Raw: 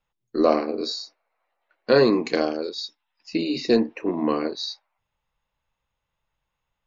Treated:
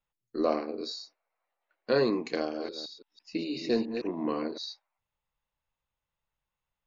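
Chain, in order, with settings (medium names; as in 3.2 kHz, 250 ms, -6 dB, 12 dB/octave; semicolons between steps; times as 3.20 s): 2.36–4.58 s: chunks repeated in reverse 166 ms, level -7.5 dB; trim -8.5 dB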